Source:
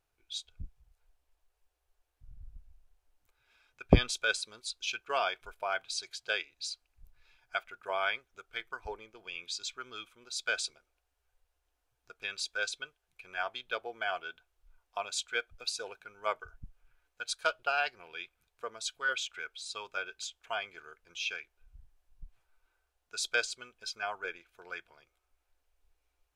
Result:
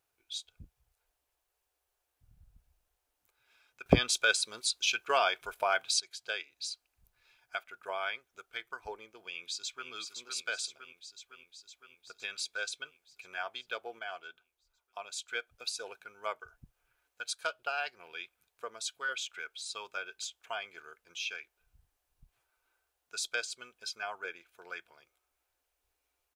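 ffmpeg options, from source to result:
-filter_complex "[0:a]asplit=2[s0][s1];[s1]afade=t=in:st=9.25:d=0.01,afade=t=out:st=9.9:d=0.01,aecho=0:1:510|1020|1530|2040|2550|3060|3570|4080|4590|5100|5610:0.446684|0.312679|0.218875|0.153212|0.107249|0.0750741|0.0525519|0.0367863|0.0257504|0.0180253|0.0126177[s2];[s0][s2]amix=inputs=2:normalize=0,asplit=5[s3][s4][s5][s6][s7];[s3]atrim=end=3.862[s8];[s4]atrim=start=3.858:end=6.002,asetpts=PTS-STARTPTS,volume=3.76[s9];[s5]atrim=start=5.998:end=13.992[s10];[s6]atrim=start=13.988:end=15.282,asetpts=PTS-STARTPTS,volume=0.501[s11];[s7]atrim=start=15.278[s12];[s8][s9]acrossfade=d=0.004:c1=hsin:c2=hsin[s13];[s13][s10]acrossfade=d=0.004:c1=hsin:c2=hsin[s14];[s14][s11]acrossfade=d=0.004:c1=hsin:c2=hsin[s15];[s15][s12]acrossfade=d=0.004:c1=hsin:c2=hsin,highpass=f=170:p=1,highshelf=f=8900:g=7.5,acompressor=threshold=0.0126:ratio=1.5"

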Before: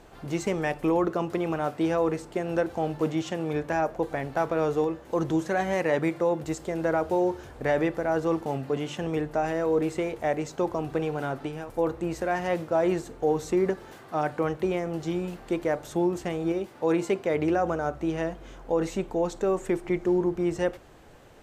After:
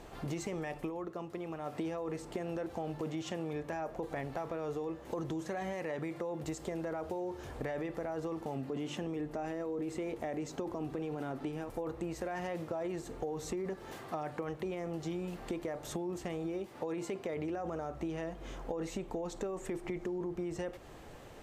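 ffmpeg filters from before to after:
-filter_complex "[0:a]asettb=1/sr,asplit=3[s0][s1][s2];[s0]atrim=end=8.554[s3];[s1]atrim=start=8.55:end=11.69,asetpts=PTS-STARTPTS,afade=t=in:d=0.004:c=qsin,afade=t=out:st=3.136:d=0.004:c=qsin,equalizer=f=280:w=1.5:g=6[s4];[s2]atrim=start=11.686[s5];[s3][s4]acrossfade=d=0.004:c1=hsin:c2=qsin[s6];[s6][s5]acrossfade=d=0.004:c1=qsin:c2=hsin,asplit=3[s7][s8][s9];[s7]atrim=end=0.91,asetpts=PTS-STARTPTS,afade=t=out:st=0.77:d=0.14:silence=0.223872[s10];[s8]atrim=start=0.91:end=1.65,asetpts=PTS-STARTPTS,volume=0.224[s11];[s9]atrim=start=1.65,asetpts=PTS-STARTPTS,afade=t=in:d=0.14:silence=0.223872[s12];[s10][s11][s12]concat=n=3:v=0:a=1,bandreject=f=1500:w=15,alimiter=limit=0.0841:level=0:latency=1:release=16,acompressor=threshold=0.0158:ratio=6,volume=1.12"

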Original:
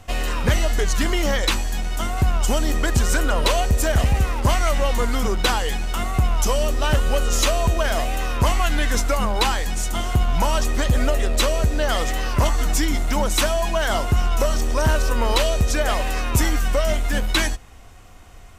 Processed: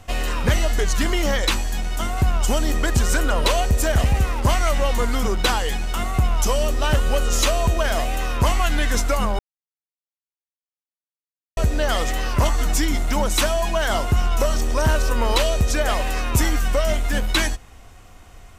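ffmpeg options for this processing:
-filter_complex "[0:a]asplit=3[s0][s1][s2];[s0]atrim=end=9.39,asetpts=PTS-STARTPTS,afade=t=out:st=9.386:d=0.004:c=hsin[s3];[s1]atrim=start=9.39:end=11.57,asetpts=PTS-STARTPTS,volume=0[s4];[s2]atrim=start=11.57,asetpts=PTS-STARTPTS,afade=t=in:d=0.004:c=hsin[s5];[s3][s4][s5]concat=n=3:v=0:a=1"

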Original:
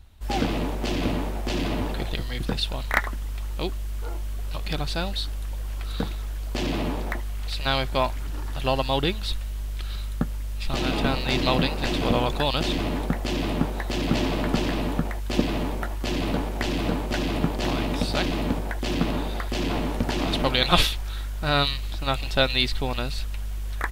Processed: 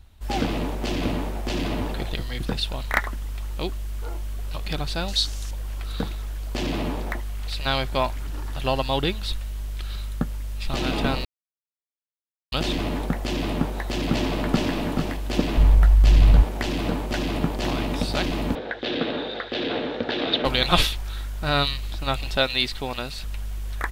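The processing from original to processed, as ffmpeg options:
-filter_complex "[0:a]asettb=1/sr,asplit=3[s0][s1][s2];[s0]atrim=end=5.084[s3];[s1]atrim=start=5.08:end=5.51,asetpts=PTS-STARTPTS,afade=t=in:d=0.004:c=qsin,afade=t=out:st=0.426:d=0.004:c=qsin,equalizer=f=6100:w=0.89:g=14.5[s4];[s2]atrim=start=5.506[s5];[s3][s4]acrossfade=d=0.004:c1=hsin:c2=qsin[s6];[s6][s5]acrossfade=d=0.004:c1=qsin:c2=hsin,asplit=2[s7][s8];[s8]afade=t=in:st=14.1:d=0.01,afade=t=out:st=14.73:d=0.01,aecho=0:1:430|860|1290|1720|2150:0.421697|0.189763|0.0853935|0.0384271|0.0172922[s9];[s7][s9]amix=inputs=2:normalize=0,asplit=3[s10][s11][s12];[s10]afade=t=out:st=15.57:d=0.02[s13];[s11]asubboost=boost=12:cutoff=86,afade=t=in:st=15.57:d=0.02,afade=t=out:st=16.42:d=0.02[s14];[s12]afade=t=in:st=16.42:d=0.02[s15];[s13][s14][s15]amix=inputs=3:normalize=0,asettb=1/sr,asplit=3[s16][s17][s18];[s16]atrim=end=18.554[s19];[s17]atrim=start=18.55:end=20.45,asetpts=PTS-STARTPTS,afade=t=in:d=0.004:c=qsin,afade=t=out:st=1.896:d=0.004:c=qsin,highpass=180,equalizer=f=180:t=q:w=4:g=-8,equalizer=f=490:t=q:w=4:g=9,equalizer=f=1000:t=q:w=4:g=-6,equalizer=f=1600:t=q:w=4:g=6,equalizer=f=3700:t=q:w=4:g=10,lowpass=f=4100:w=0.5412,lowpass=f=4100:w=1.3066[s20];[s18]atrim=start=20.446[s21];[s19][s20]acrossfade=d=0.004:c1=hsin:c2=qsin[s22];[s22][s21]acrossfade=d=0.004:c1=qsin:c2=hsin,asettb=1/sr,asplit=3[s23][s24][s25];[s23]atrim=end=22.374[s26];[s24]atrim=start=22.37:end=23.24,asetpts=PTS-STARTPTS,afade=t=in:d=0.004:c=qsin,afade=t=out:st=0.866:d=0.004:c=qsin,lowshelf=f=150:g=-8.5[s27];[s25]atrim=start=23.236[s28];[s26][s27]acrossfade=d=0.004:c1=hsin:c2=qsin[s29];[s29][s28]acrossfade=d=0.004:c1=qsin:c2=hsin,asplit=3[s30][s31][s32];[s30]atrim=end=11.25,asetpts=PTS-STARTPTS,afade=t=out:st=11.246:d=0.004:c=hsin[s33];[s31]atrim=start=11.25:end=12.52,asetpts=PTS-STARTPTS,volume=0[s34];[s32]atrim=start=12.52,asetpts=PTS-STARTPTS,afade=t=in:d=0.004:c=hsin[s35];[s33][s34][s35]concat=n=3:v=0:a=1"

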